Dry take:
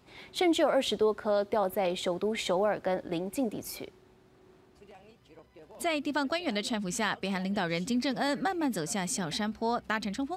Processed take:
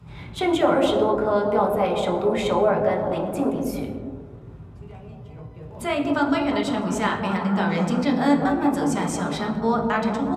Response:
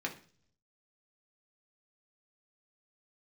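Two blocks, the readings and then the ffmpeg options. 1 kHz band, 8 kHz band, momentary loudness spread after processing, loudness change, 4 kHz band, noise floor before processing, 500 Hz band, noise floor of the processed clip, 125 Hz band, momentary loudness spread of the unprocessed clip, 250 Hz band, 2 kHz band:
+9.0 dB, 0.0 dB, 20 LU, +8.0 dB, +1.5 dB, -61 dBFS, +8.0 dB, -42 dBFS, +11.0 dB, 6 LU, +9.5 dB, +5.0 dB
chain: -filter_complex "[0:a]acrossover=split=130|1200[s0][s1][s2];[s0]aeval=exprs='0.00944*sin(PI/2*7.94*val(0)/0.00944)':c=same[s3];[s1]aecho=1:1:200|360|488|590.4|672.3:0.631|0.398|0.251|0.158|0.1[s4];[s3][s4][s2]amix=inputs=3:normalize=0[s5];[1:a]atrim=start_sample=2205,afade=t=out:st=0.18:d=0.01,atrim=end_sample=8379,asetrate=24696,aresample=44100[s6];[s5][s6]afir=irnorm=-1:irlink=0"

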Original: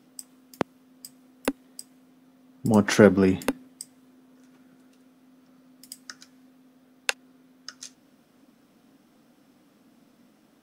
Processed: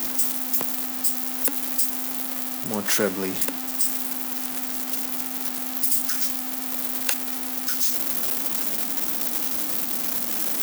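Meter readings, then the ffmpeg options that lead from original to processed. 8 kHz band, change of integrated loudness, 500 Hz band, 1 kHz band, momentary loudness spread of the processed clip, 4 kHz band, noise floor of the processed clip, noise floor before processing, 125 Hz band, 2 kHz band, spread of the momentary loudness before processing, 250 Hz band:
+13.5 dB, +1.0 dB, -7.0 dB, +1.0 dB, 5 LU, +7.5 dB, -30 dBFS, -61 dBFS, -11.0 dB, 0.0 dB, 25 LU, -5.5 dB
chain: -af "aeval=exprs='val(0)+0.5*0.0944*sgn(val(0))':c=same,aemphasis=mode=production:type=bsi,volume=0.422"

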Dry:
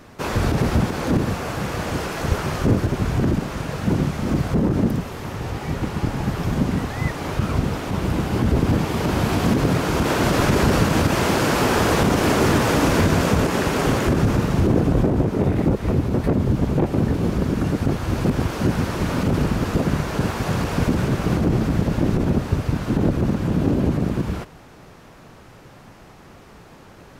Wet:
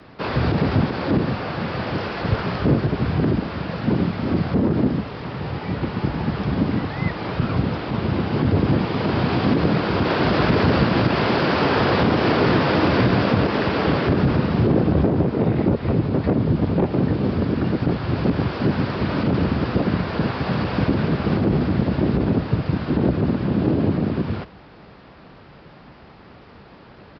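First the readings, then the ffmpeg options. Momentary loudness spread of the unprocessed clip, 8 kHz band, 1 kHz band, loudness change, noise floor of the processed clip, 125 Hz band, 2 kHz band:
7 LU, under -20 dB, 0.0 dB, 0.0 dB, -45 dBFS, -0.5 dB, 0.0 dB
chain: -af "aresample=11025,aresample=44100,afreqshift=28"

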